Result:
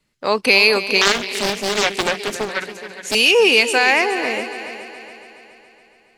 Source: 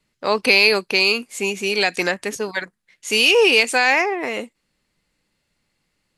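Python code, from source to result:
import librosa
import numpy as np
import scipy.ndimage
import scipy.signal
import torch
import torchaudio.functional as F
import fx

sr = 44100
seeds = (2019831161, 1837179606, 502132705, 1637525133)

y = fx.echo_heads(x, sr, ms=140, heads='second and third', feedback_pct=50, wet_db=-13.5)
y = fx.doppler_dist(y, sr, depth_ms=0.77, at=(1.01, 3.15))
y = y * 10.0 ** (1.0 / 20.0)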